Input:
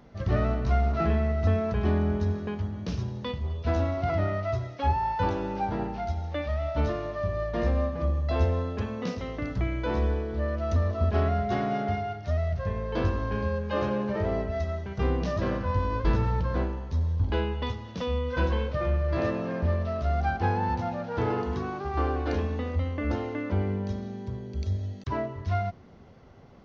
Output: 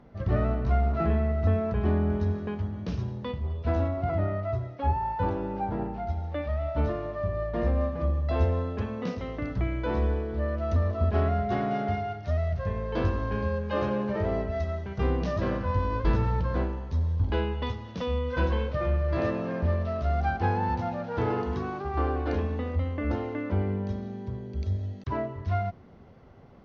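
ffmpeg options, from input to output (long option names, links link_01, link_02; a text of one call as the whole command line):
ffmpeg -i in.wav -af "asetnsamples=nb_out_samples=441:pad=0,asendcmd='2.1 lowpass f 2900;3.15 lowpass f 1900;3.88 lowpass f 1100;6.09 lowpass f 1700;7.81 lowpass f 3000;11.71 lowpass f 5100;21.82 lowpass f 2800',lowpass=frequency=1800:poles=1" out.wav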